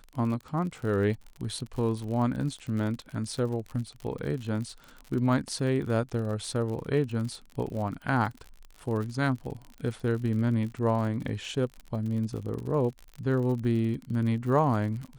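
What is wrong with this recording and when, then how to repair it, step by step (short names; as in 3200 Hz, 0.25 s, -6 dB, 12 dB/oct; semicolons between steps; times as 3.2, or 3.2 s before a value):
crackle 53/s -35 dBFS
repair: de-click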